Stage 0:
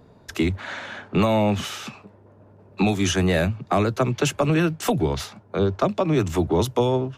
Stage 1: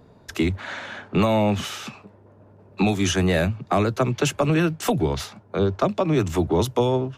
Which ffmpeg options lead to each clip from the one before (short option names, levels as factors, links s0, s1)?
-af anull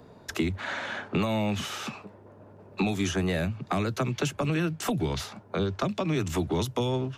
-filter_complex "[0:a]lowshelf=f=150:g=-6.5,acrossover=split=250|1500[s0][s1][s2];[s0]acompressor=threshold=0.0316:ratio=4[s3];[s1]acompressor=threshold=0.0178:ratio=4[s4];[s2]acompressor=threshold=0.0126:ratio=4[s5];[s3][s4][s5]amix=inputs=3:normalize=0,volume=1.33"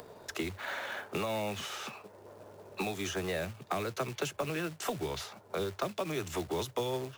-af "acompressor=mode=upward:threshold=0.0141:ratio=2.5,acrusher=bits=4:mode=log:mix=0:aa=0.000001,lowshelf=f=330:t=q:w=1.5:g=-6.5,volume=0.562"